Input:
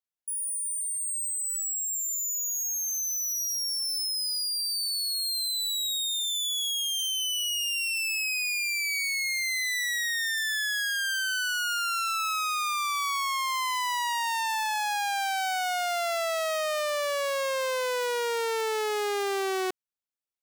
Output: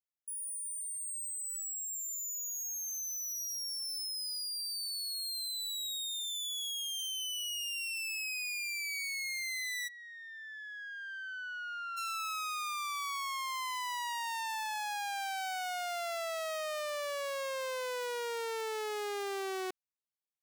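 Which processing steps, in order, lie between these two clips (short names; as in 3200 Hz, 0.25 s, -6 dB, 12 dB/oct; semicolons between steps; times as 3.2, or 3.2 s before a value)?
rattling part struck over -54 dBFS, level -44 dBFS; 9.87–11.96 LPF 1000 Hz -> 1800 Hz 12 dB/oct; gain -8.5 dB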